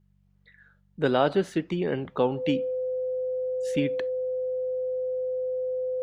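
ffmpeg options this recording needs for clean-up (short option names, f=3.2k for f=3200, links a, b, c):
-af "bandreject=f=48:t=h:w=4,bandreject=f=96:t=h:w=4,bandreject=f=144:t=h:w=4,bandreject=f=192:t=h:w=4,bandreject=f=510:w=30"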